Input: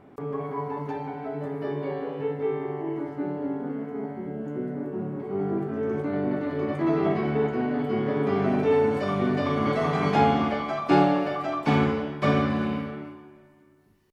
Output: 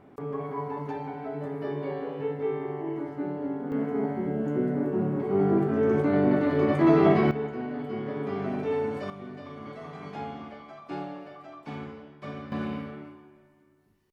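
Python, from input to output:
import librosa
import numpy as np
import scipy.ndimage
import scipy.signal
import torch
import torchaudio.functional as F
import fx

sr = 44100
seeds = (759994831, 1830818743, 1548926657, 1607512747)

y = fx.gain(x, sr, db=fx.steps((0.0, -2.0), (3.72, 4.5), (7.31, -7.0), (9.1, -16.5), (12.52, -5.0)))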